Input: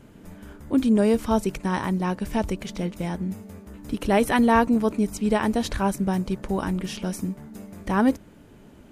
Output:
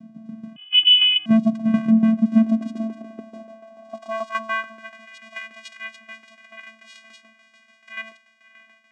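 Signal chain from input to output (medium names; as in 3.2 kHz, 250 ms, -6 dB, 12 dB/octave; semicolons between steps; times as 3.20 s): de-hum 144.7 Hz, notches 34; 3.01–3.47 s: compressor with a negative ratio -37 dBFS, ratio -1; echo that smears into a reverb 612 ms, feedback 64%, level -16 dB; vocoder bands 4, square 222 Hz; tremolo saw down 6.9 Hz, depth 60%; 0.56–1.26 s: frequency inversion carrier 3.2 kHz; high-pass sweep 140 Hz -> 2 kHz, 1.82–5.09 s; trim +6.5 dB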